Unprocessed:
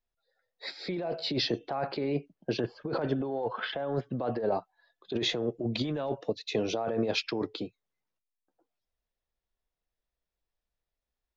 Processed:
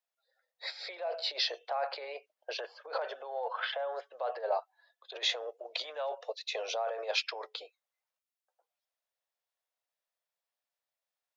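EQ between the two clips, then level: steep high-pass 520 Hz 48 dB/oct; 0.0 dB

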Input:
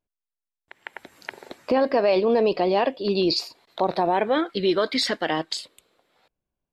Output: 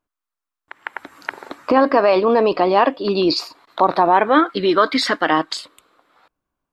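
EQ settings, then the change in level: bell 290 Hz +9 dB 0.28 oct; bell 1200 Hz +13.5 dB 1 oct; +2.0 dB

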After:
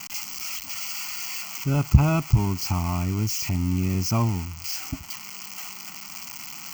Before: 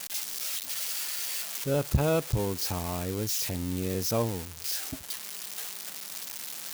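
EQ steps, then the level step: low shelf 460 Hz +8 dB; bell 1700 Hz +6 dB 1.3 oct; fixed phaser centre 2500 Hz, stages 8; +3.0 dB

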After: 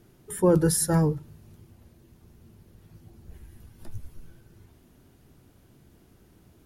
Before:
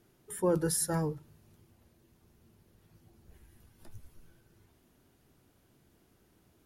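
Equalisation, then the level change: low shelf 280 Hz +7 dB; +5.5 dB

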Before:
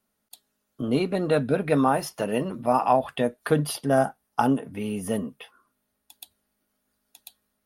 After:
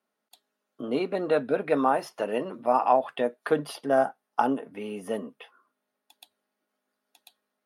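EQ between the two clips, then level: HPF 330 Hz 12 dB/oct; LPF 2400 Hz 6 dB/oct; 0.0 dB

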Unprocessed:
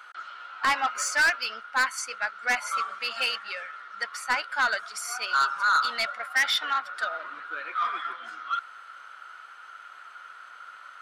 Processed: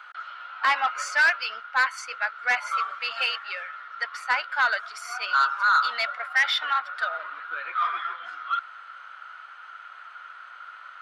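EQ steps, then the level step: three-band isolator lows -16 dB, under 500 Hz, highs -14 dB, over 4500 Hz; +2.5 dB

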